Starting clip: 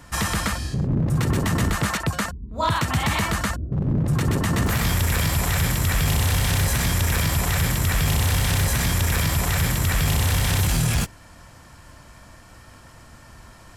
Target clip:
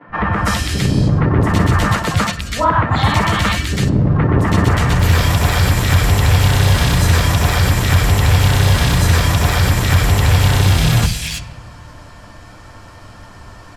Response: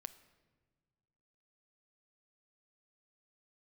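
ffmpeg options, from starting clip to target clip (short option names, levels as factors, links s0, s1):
-filter_complex "[0:a]acrossover=split=160|2100[s0][s1][s2];[s0]adelay=70[s3];[s2]adelay=330[s4];[s3][s1][s4]amix=inputs=3:normalize=0,asplit=2[s5][s6];[1:a]atrim=start_sample=2205,lowpass=4800,adelay=10[s7];[s6][s7]afir=irnorm=-1:irlink=0,volume=5.96[s8];[s5][s8]amix=inputs=2:normalize=0,volume=0.841"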